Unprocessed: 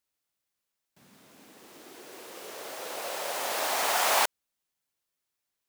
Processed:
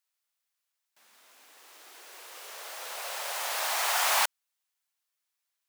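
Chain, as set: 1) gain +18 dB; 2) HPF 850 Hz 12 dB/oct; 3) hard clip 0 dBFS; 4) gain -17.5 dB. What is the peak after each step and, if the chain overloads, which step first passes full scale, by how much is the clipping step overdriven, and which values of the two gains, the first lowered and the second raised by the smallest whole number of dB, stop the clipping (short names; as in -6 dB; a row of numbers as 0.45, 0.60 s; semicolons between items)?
+7.0, +5.5, 0.0, -17.5 dBFS; step 1, 5.5 dB; step 1 +12 dB, step 4 -11.5 dB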